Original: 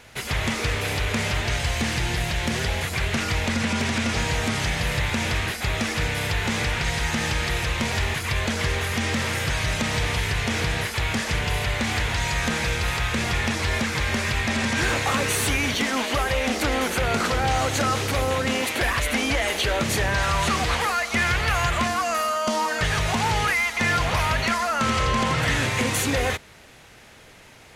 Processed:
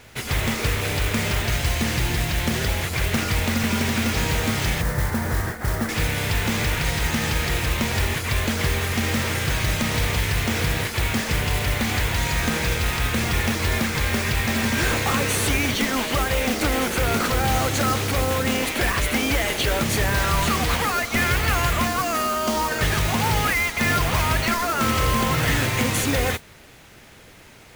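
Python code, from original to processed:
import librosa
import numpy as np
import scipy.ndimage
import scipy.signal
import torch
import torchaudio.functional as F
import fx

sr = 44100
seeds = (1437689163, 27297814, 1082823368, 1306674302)

p1 = fx.steep_lowpass(x, sr, hz=1900.0, slope=48, at=(4.81, 5.89))
p2 = fx.mod_noise(p1, sr, seeds[0], snr_db=11)
p3 = fx.sample_hold(p2, sr, seeds[1], rate_hz=1000.0, jitter_pct=0)
y = p2 + (p3 * 10.0 ** (-9.0 / 20.0))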